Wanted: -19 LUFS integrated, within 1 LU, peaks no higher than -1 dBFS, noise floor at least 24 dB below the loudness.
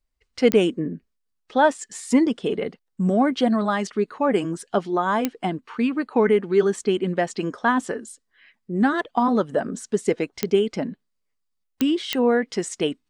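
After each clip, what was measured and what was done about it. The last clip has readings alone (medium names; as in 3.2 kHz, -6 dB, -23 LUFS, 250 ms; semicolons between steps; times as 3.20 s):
clicks found 5; loudness -23.0 LUFS; peak level -5.5 dBFS; loudness target -19.0 LUFS
-> de-click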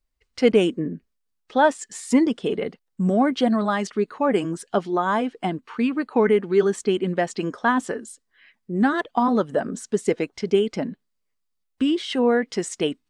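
clicks found 0; loudness -23.0 LUFS; peak level -6.0 dBFS; loudness target -19.0 LUFS
-> trim +4 dB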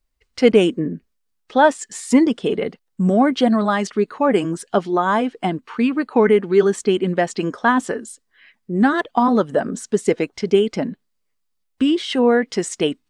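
loudness -19.0 LUFS; peak level -2.0 dBFS; noise floor -71 dBFS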